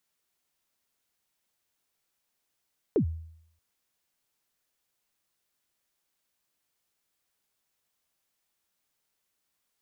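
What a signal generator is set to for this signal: kick drum length 0.63 s, from 490 Hz, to 81 Hz, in 92 ms, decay 0.70 s, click off, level -18 dB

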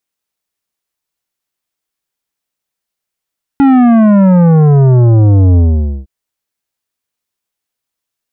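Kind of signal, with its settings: sub drop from 280 Hz, over 2.46 s, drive 11.5 dB, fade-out 0.49 s, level -5 dB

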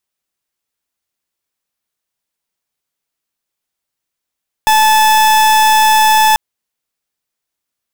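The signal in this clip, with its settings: pulse 869 Hz, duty 40% -9 dBFS 1.69 s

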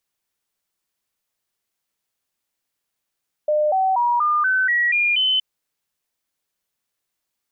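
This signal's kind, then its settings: stepped sine 604 Hz up, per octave 3, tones 8, 0.24 s, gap 0.00 s -15.5 dBFS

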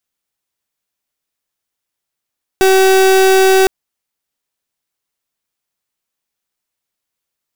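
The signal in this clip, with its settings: pulse 381 Hz, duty 36% -9 dBFS 1.06 s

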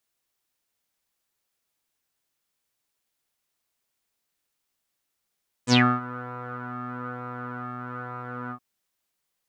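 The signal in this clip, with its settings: synth patch with pulse-width modulation B3, oscillator 2 saw, interval 0 st, detune 5 cents, sub -3 dB, filter lowpass, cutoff 1100 Hz, Q 9.9, filter envelope 3 oct, filter decay 0.16 s, filter sustain 10%, attack 61 ms, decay 0.27 s, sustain -19.5 dB, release 0.08 s, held 2.84 s, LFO 1.1 Hz, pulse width 33%, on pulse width 18%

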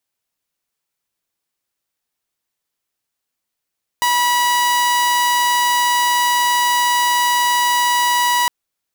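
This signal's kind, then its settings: tone saw 973 Hz -11 dBFS 4.46 s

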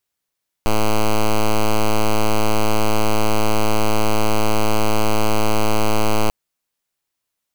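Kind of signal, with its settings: pulse 108 Hz, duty 6% -14 dBFS 5.64 s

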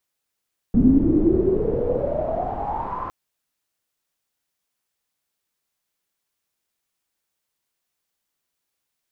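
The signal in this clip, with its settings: swept filtered noise pink, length 2.36 s lowpass, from 240 Hz, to 1100 Hz, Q 12, exponential, gain ramp -16 dB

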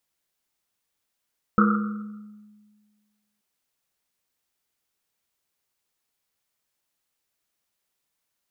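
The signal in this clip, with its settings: Risset drum length 1.83 s, pitch 210 Hz, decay 1.69 s, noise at 1300 Hz, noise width 240 Hz, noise 35%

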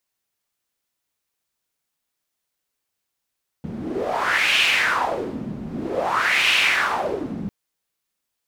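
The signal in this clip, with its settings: wind-like swept noise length 3.85 s, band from 190 Hz, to 2700 Hz, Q 4, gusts 2, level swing 11.5 dB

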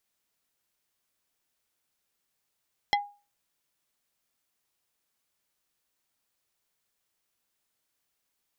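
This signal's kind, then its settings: wood hit plate, lowest mode 817 Hz, decay 0.33 s, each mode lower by 2 dB, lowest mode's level -19 dB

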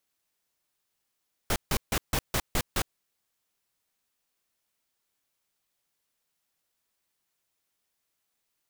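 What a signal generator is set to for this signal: noise bursts pink, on 0.06 s, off 0.15 s, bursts 7, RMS -26 dBFS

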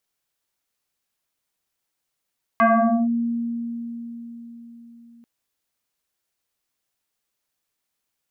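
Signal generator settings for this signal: FM tone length 2.64 s, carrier 234 Hz, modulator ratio 1.95, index 3.1, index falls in 0.48 s linear, decay 4.54 s, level -12 dB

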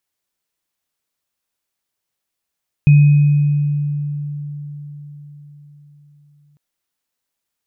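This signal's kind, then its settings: sine partials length 3.70 s, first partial 146 Hz, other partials 2510 Hz, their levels -20 dB, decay 4.74 s, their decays 1.57 s, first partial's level -4.5 dB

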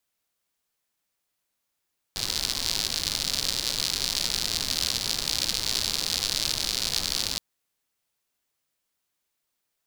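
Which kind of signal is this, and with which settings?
rain from filtered ticks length 5.22 s, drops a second 120, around 4400 Hz, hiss -9 dB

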